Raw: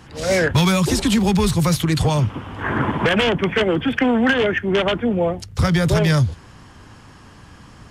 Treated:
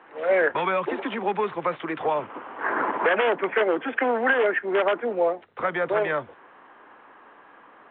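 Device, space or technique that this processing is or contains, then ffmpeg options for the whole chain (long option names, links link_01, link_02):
telephone: -filter_complex "[0:a]highpass=320,lowpass=3000,acrossover=split=320 2400:gain=0.141 1 0.0631[link_01][link_02][link_03];[link_01][link_02][link_03]amix=inputs=3:normalize=0" -ar 8000 -c:a pcm_alaw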